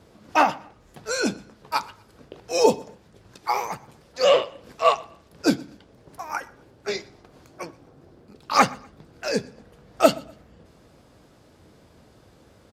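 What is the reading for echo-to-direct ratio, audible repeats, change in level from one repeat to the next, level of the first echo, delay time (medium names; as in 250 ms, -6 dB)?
-23.5 dB, 2, -10.5 dB, -24.0 dB, 122 ms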